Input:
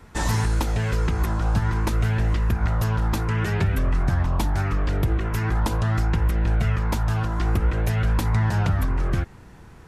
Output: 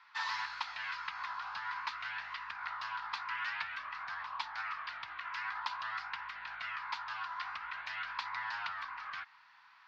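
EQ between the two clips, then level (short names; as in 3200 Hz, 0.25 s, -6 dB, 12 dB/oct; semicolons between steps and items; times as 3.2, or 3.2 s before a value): elliptic band-pass 1000–4700 Hz, stop band 40 dB; -4.5 dB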